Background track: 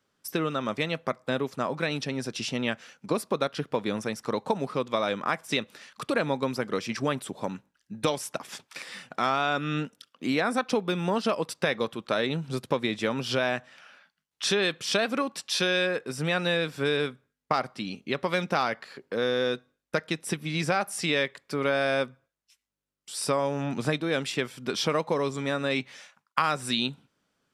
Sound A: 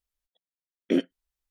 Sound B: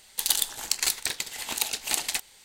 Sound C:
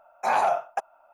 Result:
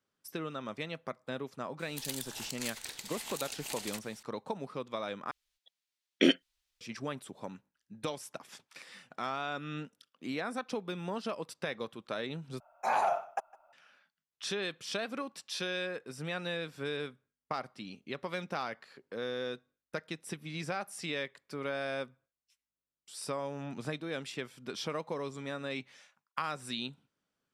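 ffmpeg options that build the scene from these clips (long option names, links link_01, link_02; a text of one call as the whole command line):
ffmpeg -i bed.wav -i cue0.wav -i cue1.wav -i cue2.wav -filter_complex "[0:a]volume=-10.5dB[link_01];[2:a]acompressor=threshold=-36dB:ratio=2:attack=0.64:release=55:knee=1:detection=rms[link_02];[1:a]equalizer=frequency=3600:width_type=o:width=2.8:gain=14[link_03];[3:a]asplit=2[link_04][link_05];[link_05]adelay=157.4,volume=-22dB,highshelf=frequency=4000:gain=-3.54[link_06];[link_04][link_06]amix=inputs=2:normalize=0[link_07];[link_01]asplit=3[link_08][link_09][link_10];[link_08]atrim=end=5.314[link_11];[link_03]atrim=end=1.5,asetpts=PTS-STARTPTS,volume=-2.5dB[link_12];[link_09]atrim=start=6.806:end=12.604[link_13];[link_07]atrim=end=1.13,asetpts=PTS-STARTPTS,volume=-6.5dB[link_14];[link_10]atrim=start=13.726[link_15];[link_02]atrim=end=2.44,asetpts=PTS-STARTPTS,volume=-4dB,afade=type=in:duration=0.004:curve=hsin,afade=type=out:start_time=2.436:duration=0.004:curve=hsin,adelay=1790[link_16];[link_11][link_12]acrossfade=duration=0.004:curve1=hsin:curve2=hsin[link_17];[link_17][link_13]acrossfade=duration=0.004:curve1=hsin:curve2=hsin[link_18];[link_18][link_14]acrossfade=duration=0.004:curve1=hsin:curve2=hsin[link_19];[link_19][link_15]acrossfade=duration=0.004:curve1=hsin:curve2=hsin[link_20];[link_20][link_16]amix=inputs=2:normalize=0" out.wav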